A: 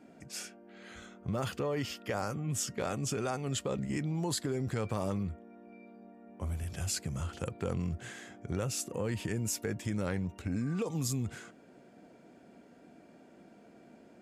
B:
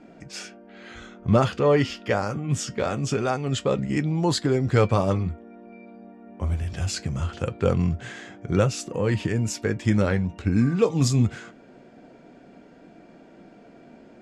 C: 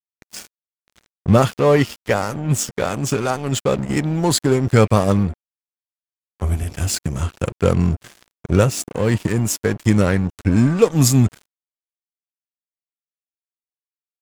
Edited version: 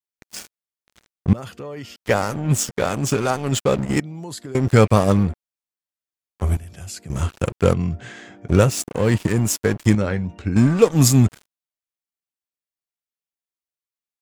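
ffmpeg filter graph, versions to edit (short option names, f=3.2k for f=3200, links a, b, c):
-filter_complex "[0:a]asplit=3[a][b][c];[1:a]asplit=2[d][e];[2:a]asplit=6[f][g][h][i][j][k];[f]atrim=end=1.332[l];[a]atrim=start=1.328:end=1.962[m];[g]atrim=start=1.958:end=4.002[n];[b]atrim=start=3.998:end=4.552[o];[h]atrim=start=4.548:end=6.572[p];[c]atrim=start=6.568:end=7.102[q];[i]atrim=start=7.098:end=7.742[r];[d]atrim=start=7.738:end=8.482[s];[j]atrim=start=8.478:end=9.952[t];[e]atrim=start=9.948:end=10.562[u];[k]atrim=start=10.558[v];[l][m]acrossfade=d=0.004:c1=hsin:c2=hsin[w];[w][n]acrossfade=d=0.004:c1=hsin:c2=hsin[x];[x][o]acrossfade=d=0.004:c1=hsin:c2=hsin[y];[y][p]acrossfade=d=0.004:c1=hsin:c2=hsin[z];[z][q]acrossfade=d=0.004:c1=hsin:c2=hsin[aa];[aa][r]acrossfade=d=0.004:c1=hsin:c2=hsin[ab];[ab][s]acrossfade=d=0.004:c1=hsin:c2=hsin[ac];[ac][t]acrossfade=d=0.004:c1=hsin:c2=hsin[ad];[ad][u]acrossfade=d=0.004:c1=hsin:c2=hsin[ae];[ae][v]acrossfade=d=0.004:c1=hsin:c2=hsin"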